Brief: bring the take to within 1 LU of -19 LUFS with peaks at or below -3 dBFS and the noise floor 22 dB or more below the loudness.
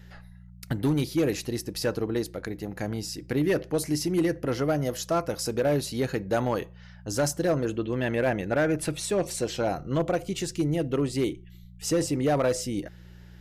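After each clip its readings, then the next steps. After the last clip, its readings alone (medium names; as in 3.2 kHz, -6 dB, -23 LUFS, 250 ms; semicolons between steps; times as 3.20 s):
clipped samples 1.1%; clipping level -18.0 dBFS; hum 60 Hz; highest harmonic 180 Hz; hum level -47 dBFS; loudness -28.0 LUFS; peak level -18.0 dBFS; loudness target -19.0 LUFS
-> clip repair -18 dBFS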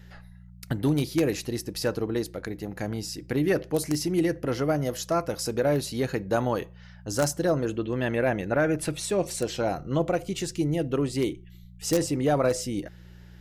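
clipped samples 0.0%; hum 60 Hz; highest harmonic 180 Hz; hum level -47 dBFS
-> de-hum 60 Hz, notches 3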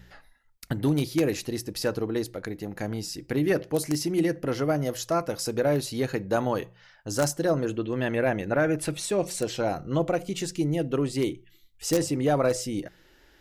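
hum not found; loudness -27.5 LUFS; peak level -9.0 dBFS; loudness target -19.0 LUFS
-> trim +8.5 dB; peak limiter -3 dBFS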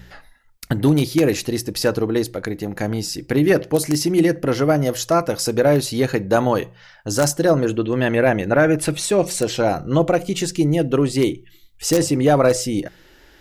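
loudness -19.0 LUFS; peak level -3.0 dBFS; noise floor -50 dBFS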